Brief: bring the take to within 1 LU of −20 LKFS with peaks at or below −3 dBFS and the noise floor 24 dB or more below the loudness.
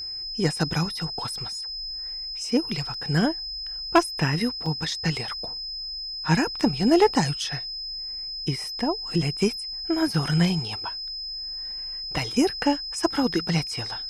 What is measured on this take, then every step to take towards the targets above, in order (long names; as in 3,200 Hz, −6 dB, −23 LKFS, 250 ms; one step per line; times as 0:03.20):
number of dropouts 2; longest dropout 3.6 ms; interfering tone 5,100 Hz; level of the tone −31 dBFS; integrated loudness −25.5 LKFS; sample peak −9.0 dBFS; target loudness −20.0 LKFS
→ repair the gap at 0:02.94/0:04.66, 3.6 ms
notch filter 5,100 Hz, Q 30
level +5.5 dB